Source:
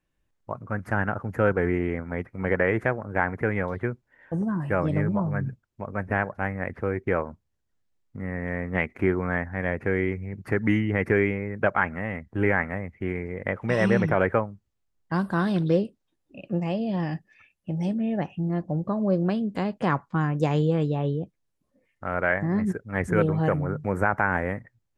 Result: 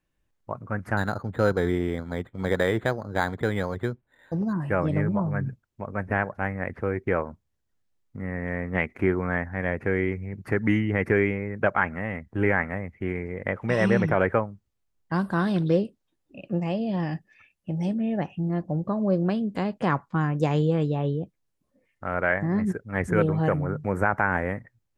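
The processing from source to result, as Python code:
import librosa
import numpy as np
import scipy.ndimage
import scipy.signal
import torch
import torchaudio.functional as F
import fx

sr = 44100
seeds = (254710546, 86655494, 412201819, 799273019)

y = fx.resample_linear(x, sr, factor=8, at=(0.97, 4.53))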